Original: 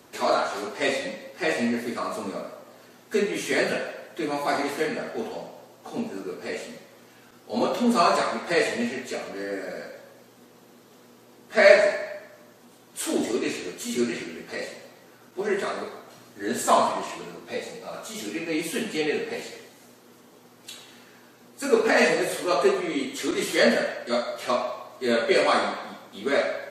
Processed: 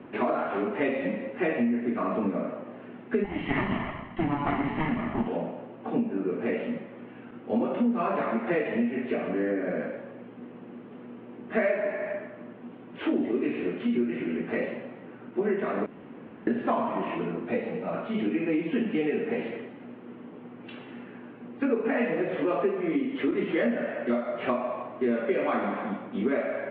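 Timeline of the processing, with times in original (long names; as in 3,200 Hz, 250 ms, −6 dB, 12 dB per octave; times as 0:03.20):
0:03.24–0:05.28: lower of the sound and its delayed copy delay 1 ms
0:15.86–0:16.47: fill with room tone
whole clip: Butterworth low-pass 2,900 Hz 48 dB per octave; parametric band 230 Hz +11 dB 1.7 octaves; downward compressor 6 to 1, threshold −26 dBFS; level +2 dB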